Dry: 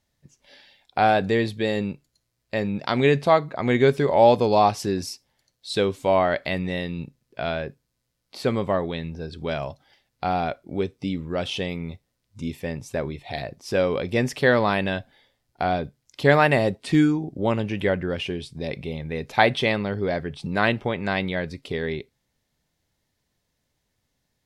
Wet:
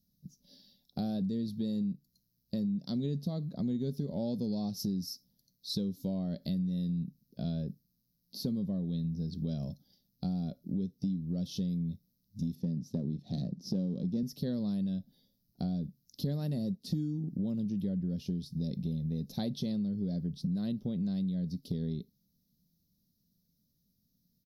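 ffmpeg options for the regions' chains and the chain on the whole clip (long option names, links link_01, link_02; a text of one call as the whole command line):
ffmpeg -i in.wav -filter_complex "[0:a]asettb=1/sr,asplit=3[link_01][link_02][link_03];[link_01]atrim=end=12.554[link_04];[link_02]atrim=start=12.55:end=14.23,asetpts=PTS-STARTPTS,afade=type=in:duration=0.004:curve=qsin,afade=type=out:start_time=1.676:duration=0.004:curve=qsin,aeval=exprs='if(lt(val(0),0),0.447*val(0),val(0))':channel_layout=same,highpass=150,lowpass=6600,lowshelf=frequency=480:gain=11[link_05];[link_03]atrim=start=14.226[link_06];[link_04][link_05]acrossfade=duration=0.004:curve1=hsin:curve2=qsin[link_07];[link_07][link_06]acrossfade=duration=0.004:curve1=qsin:curve2=hsin,firequalizer=gain_entry='entry(120,0);entry(180,14);entry(350,-6);entry(570,-10);entry(880,-23);entry(2300,-28);entry(3900,-2);entry(5500,4);entry(8100,-14);entry(12000,11)':delay=0.05:min_phase=1,acompressor=threshold=-27dB:ratio=6,volume=-4dB" out.wav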